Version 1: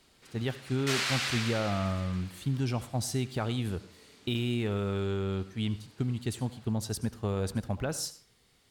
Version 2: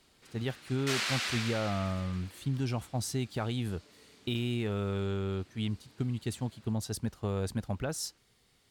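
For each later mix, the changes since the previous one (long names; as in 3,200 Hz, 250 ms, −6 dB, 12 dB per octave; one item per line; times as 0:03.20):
reverb: off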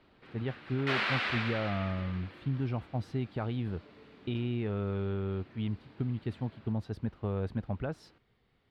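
background +7.5 dB
master: add high-frequency loss of the air 410 metres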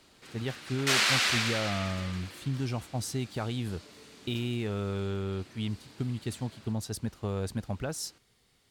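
master: remove high-frequency loss of the air 410 metres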